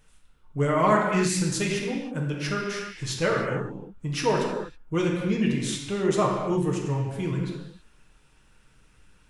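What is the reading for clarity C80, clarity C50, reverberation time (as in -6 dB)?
3.5 dB, 2.0 dB, not exponential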